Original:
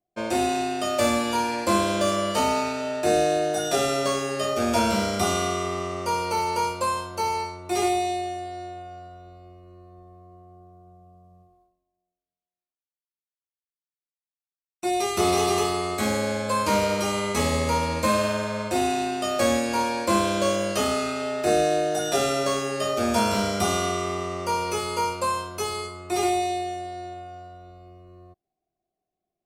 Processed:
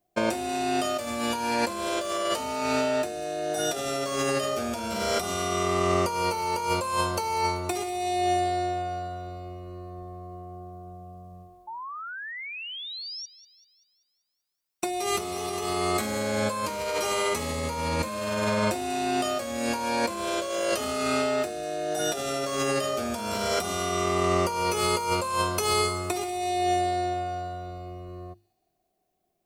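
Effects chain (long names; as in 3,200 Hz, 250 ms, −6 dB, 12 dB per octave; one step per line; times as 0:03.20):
high-shelf EQ 12,000 Hz +6 dB
mains-hum notches 50/100/150/200/250/300/350 Hz
compressor whose output falls as the input rises −31 dBFS, ratio −1
sound drawn into the spectrogram rise, 0:11.67–0:13.26, 860–5,800 Hz −40 dBFS
on a send: delay with a high-pass on its return 193 ms, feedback 51%, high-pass 4,800 Hz, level −14 dB
on the sum: level +3 dB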